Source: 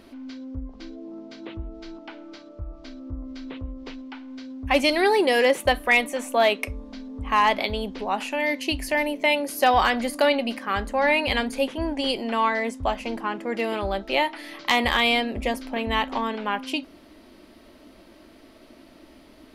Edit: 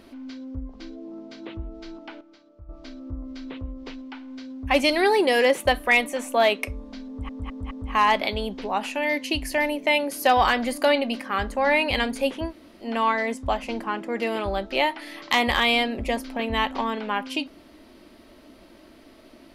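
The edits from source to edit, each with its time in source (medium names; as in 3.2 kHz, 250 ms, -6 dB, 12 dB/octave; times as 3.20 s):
2.21–2.69 s: gain -11 dB
7.08 s: stutter 0.21 s, 4 plays
11.85–12.21 s: room tone, crossfade 0.10 s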